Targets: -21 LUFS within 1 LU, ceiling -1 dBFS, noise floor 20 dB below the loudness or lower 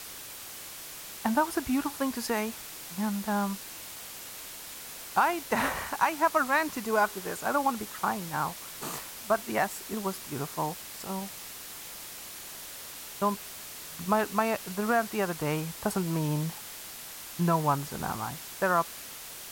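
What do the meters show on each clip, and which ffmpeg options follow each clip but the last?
noise floor -43 dBFS; noise floor target -51 dBFS; loudness -31.0 LUFS; peak -12.0 dBFS; loudness target -21.0 LUFS
-> -af "afftdn=nr=8:nf=-43"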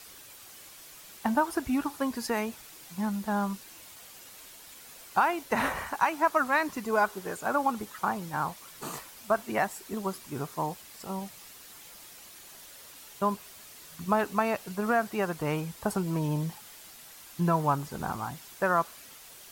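noise floor -50 dBFS; noise floor target -51 dBFS
-> -af "afftdn=nr=6:nf=-50"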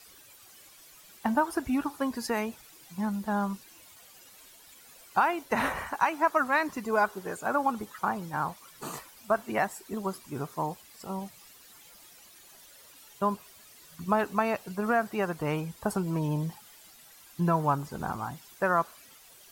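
noise floor -54 dBFS; loudness -30.5 LUFS; peak -12.0 dBFS; loudness target -21.0 LUFS
-> -af "volume=9.5dB"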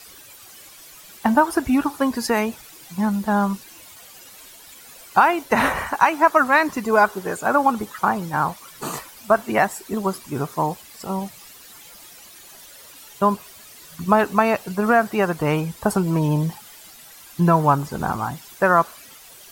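loudness -21.0 LUFS; peak -2.5 dBFS; noise floor -45 dBFS

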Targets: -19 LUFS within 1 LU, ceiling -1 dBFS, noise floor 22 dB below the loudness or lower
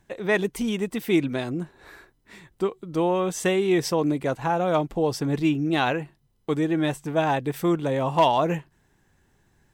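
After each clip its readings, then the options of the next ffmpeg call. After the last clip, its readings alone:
loudness -24.5 LUFS; peak -10.0 dBFS; loudness target -19.0 LUFS
-> -af "volume=5.5dB"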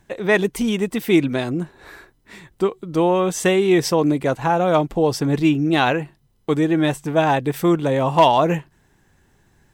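loudness -19.0 LUFS; peak -4.5 dBFS; noise floor -61 dBFS

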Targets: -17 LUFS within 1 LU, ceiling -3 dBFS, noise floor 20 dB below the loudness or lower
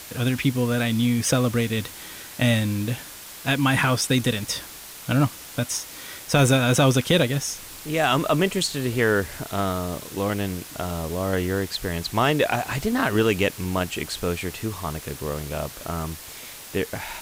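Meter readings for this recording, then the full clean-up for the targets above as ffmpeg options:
noise floor -41 dBFS; noise floor target -44 dBFS; loudness -24.0 LUFS; peak -8.5 dBFS; loudness target -17.0 LUFS
-> -af "afftdn=nr=6:nf=-41"
-af "volume=7dB,alimiter=limit=-3dB:level=0:latency=1"

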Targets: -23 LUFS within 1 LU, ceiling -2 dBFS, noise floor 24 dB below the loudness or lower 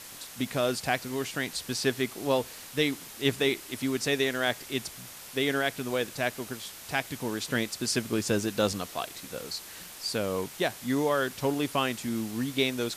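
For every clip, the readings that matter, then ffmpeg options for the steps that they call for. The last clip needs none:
noise floor -45 dBFS; noise floor target -54 dBFS; loudness -30.0 LUFS; peak -12.0 dBFS; loudness target -23.0 LUFS
-> -af "afftdn=nr=9:nf=-45"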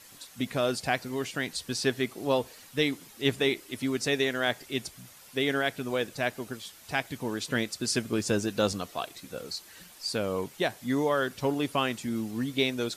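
noise floor -52 dBFS; noise floor target -54 dBFS
-> -af "afftdn=nr=6:nf=-52"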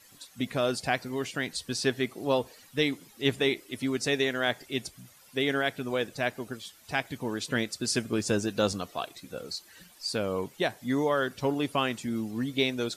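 noise floor -56 dBFS; loudness -30.0 LUFS; peak -12.0 dBFS; loudness target -23.0 LUFS
-> -af "volume=7dB"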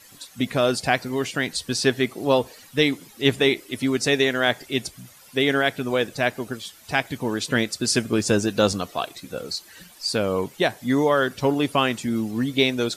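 loudness -23.0 LUFS; peak -5.0 dBFS; noise floor -49 dBFS

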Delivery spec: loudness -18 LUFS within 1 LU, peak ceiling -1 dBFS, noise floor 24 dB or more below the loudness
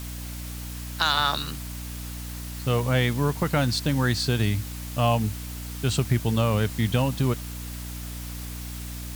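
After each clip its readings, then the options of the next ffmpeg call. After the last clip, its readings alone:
hum 60 Hz; harmonics up to 300 Hz; hum level -33 dBFS; noise floor -35 dBFS; noise floor target -51 dBFS; loudness -26.5 LUFS; peak -7.0 dBFS; loudness target -18.0 LUFS
-> -af "bandreject=f=60:t=h:w=4,bandreject=f=120:t=h:w=4,bandreject=f=180:t=h:w=4,bandreject=f=240:t=h:w=4,bandreject=f=300:t=h:w=4"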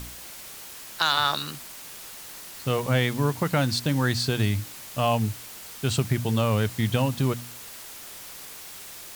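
hum none; noise floor -42 dBFS; noise floor target -50 dBFS
-> -af "afftdn=nr=8:nf=-42"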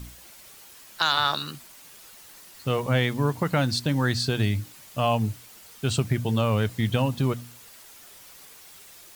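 noise floor -49 dBFS; noise floor target -50 dBFS
-> -af "afftdn=nr=6:nf=-49"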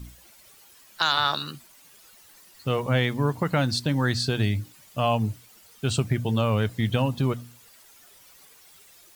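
noise floor -54 dBFS; loudness -25.5 LUFS; peak -7.5 dBFS; loudness target -18.0 LUFS
-> -af "volume=7.5dB,alimiter=limit=-1dB:level=0:latency=1"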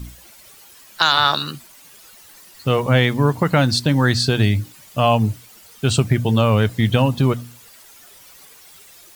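loudness -18.0 LUFS; peak -1.0 dBFS; noise floor -46 dBFS

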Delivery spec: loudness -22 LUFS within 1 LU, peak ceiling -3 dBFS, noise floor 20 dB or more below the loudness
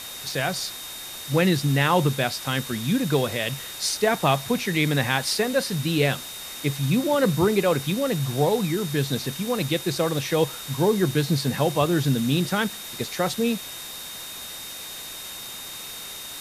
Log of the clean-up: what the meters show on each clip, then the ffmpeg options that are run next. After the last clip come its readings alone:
steady tone 3700 Hz; tone level -39 dBFS; noise floor -37 dBFS; noise floor target -45 dBFS; loudness -24.5 LUFS; peak -6.5 dBFS; loudness target -22.0 LUFS
-> -af "bandreject=f=3.7k:w=30"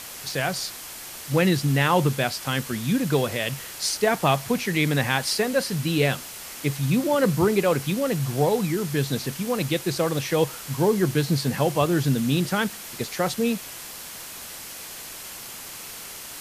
steady tone none; noise floor -39 dBFS; noise floor target -44 dBFS
-> -af "afftdn=nr=6:nf=-39"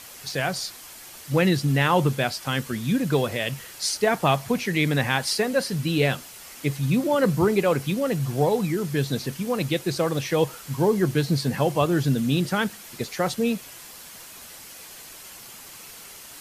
noise floor -43 dBFS; noise floor target -44 dBFS
-> -af "afftdn=nr=6:nf=-43"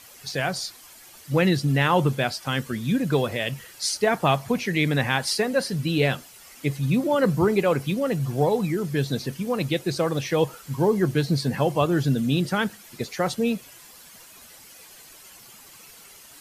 noise floor -48 dBFS; loudness -24.0 LUFS; peak -6.5 dBFS; loudness target -22.0 LUFS
-> -af "volume=2dB"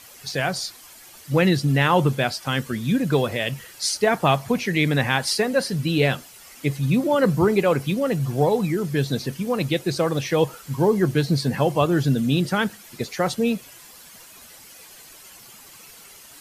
loudness -22.0 LUFS; peak -4.5 dBFS; noise floor -46 dBFS

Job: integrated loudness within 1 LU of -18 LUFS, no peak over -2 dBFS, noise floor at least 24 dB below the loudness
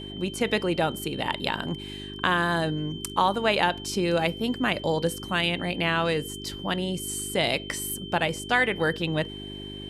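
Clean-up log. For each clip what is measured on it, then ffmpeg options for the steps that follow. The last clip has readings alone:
hum 50 Hz; harmonics up to 400 Hz; hum level -37 dBFS; steady tone 3100 Hz; tone level -40 dBFS; loudness -26.5 LUFS; peak -6.0 dBFS; loudness target -18.0 LUFS
-> -af "bandreject=f=50:t=h:w=4,bandreject=f=100:t=h:w=4,bandreject=f=150:t=h:w=4,bandreject=f=200:t=h:w=4,bandreject=f=250:t=h:w=4,bandreject=f=300:t=h:w=4,bandreject=f=350:t=h:w=4,bandreject=f=400:t=h:w=4"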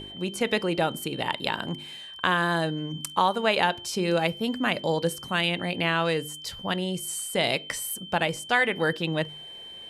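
hum none; steady tone 3100 Hz; tone level -40 dBFS
-> -af "bandreject=f=3.1k:w=30"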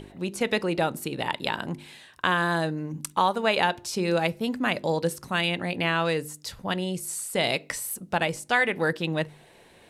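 steady tone none; loudness -27.0 LUFS; peak -6.0 dBFS; loudness target -18.0 LUFS
-> -af "volume=9dB,alimiter=limit=-2dB:level=0:latency=1"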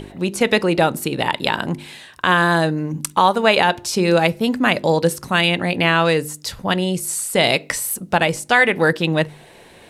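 loudness -18.0 LUFS; peak -2.0 dBFS; noise floor -45 dBFS

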